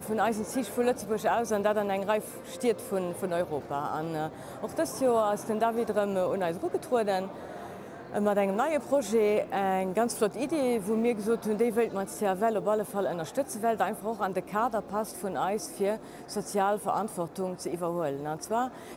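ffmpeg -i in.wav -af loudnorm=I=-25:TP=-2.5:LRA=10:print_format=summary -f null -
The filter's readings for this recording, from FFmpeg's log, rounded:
Input Integrated:    -29.8 LUFS
Input True Peak:     -13.2 dBTP
Input LRA:             4.0 LU
Input Threshold:     -40.0 LUFS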